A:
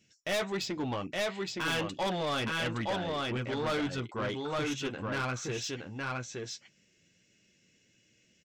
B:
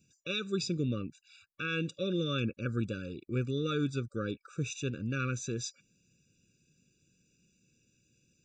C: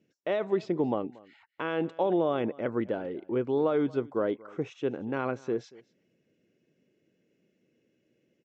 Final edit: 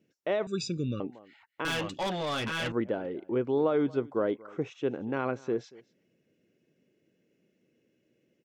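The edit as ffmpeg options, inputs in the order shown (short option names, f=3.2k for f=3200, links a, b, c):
-filter_complex "[2:a]asplit=3[a][b][c];[a]atrim=end=0.472[d];[1:a]atrim=start=0.468:end=1.002[e];[b]atrim=start=0.998:end=1.652[f];[0:a]atrim=start=1.648:end=2.722[g];[c]atrim=start=2.718[h];[d][e]acrossfade=d=0.004:c1=hsin:c2=hsin[i];[i][f]acrossfade=d=0.004:c1=hsin:c2=hsin[j];[j][g]acrossfade=d=0.004:c1=hsin:c2=hsin[k];[k][h]acrossfade=d=0.004:c1=hsin:c2=hsin"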